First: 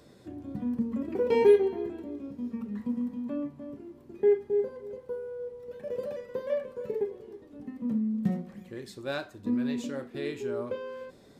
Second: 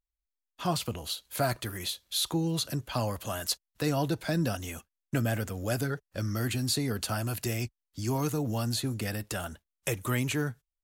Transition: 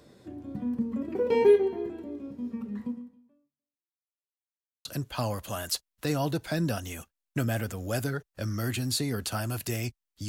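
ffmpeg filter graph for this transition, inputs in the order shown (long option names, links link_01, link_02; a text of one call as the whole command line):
ffmpeg -i cue0.wav -i cue1.wav -filter_complex "[0:a]apad=whole_dur=10.28,atrim=end=10.28,asplit=2[link_01][link_02];[link_01]atrim=end=4.28,asetpts=PTS-STARTPTS,afade=type=out:start_time=2.86:duration=1.42:curve=exp[link_03];[link_02]atrim=start=4.28:end=4.85,asetpts=PTS-STARTPTS,volume=0[link_04];[1:a]atrim=start=2.62:end=8.05,asetpts=PTS-STARTPTS,afade=type=in:duration=0.004:curve=hsin[link_05];[link_03][link_04][link_05]concat=n=3:v=0:a=1" out.wav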